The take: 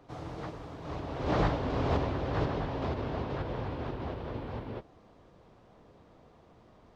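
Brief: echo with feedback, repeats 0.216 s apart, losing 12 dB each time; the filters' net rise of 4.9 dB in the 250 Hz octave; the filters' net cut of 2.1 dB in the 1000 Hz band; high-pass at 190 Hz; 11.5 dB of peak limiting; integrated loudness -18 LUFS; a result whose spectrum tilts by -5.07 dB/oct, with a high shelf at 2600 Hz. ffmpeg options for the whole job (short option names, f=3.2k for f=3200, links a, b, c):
-af "highpass=190,equalizer=f=250:t=o:g=8,equalizer=f=1k:t=o:g=-4.5,highshelf=f=2.6k:g=8,alimiter=level_in=2.5dB:limit=-24dB:level=0:latency=1,volume=-2.5dB,aecho=1:1:216|432|648:0.251|0.0628|0.0157,volume=18.5dB"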